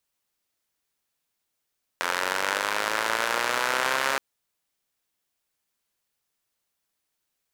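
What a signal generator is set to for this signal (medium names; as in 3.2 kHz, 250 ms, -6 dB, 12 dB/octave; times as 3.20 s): four-cylinder engine model, changing speed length 2.17 s, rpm 2600, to 4100, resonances 580/970/1400 Hz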